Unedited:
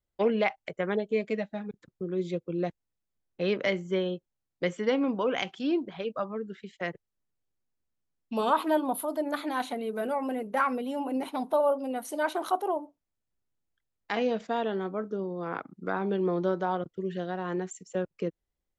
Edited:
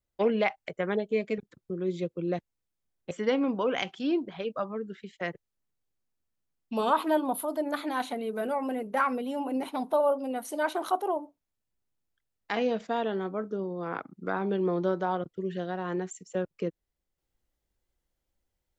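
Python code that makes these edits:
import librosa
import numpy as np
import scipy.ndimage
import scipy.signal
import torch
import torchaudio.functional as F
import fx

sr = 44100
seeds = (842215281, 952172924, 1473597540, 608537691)

y = fx.edit(x, sr, fx.cut(start_s=1.38, length_s=0.31),
    fx.cut(start_s=3.42, length_s=1.29), tone=tone)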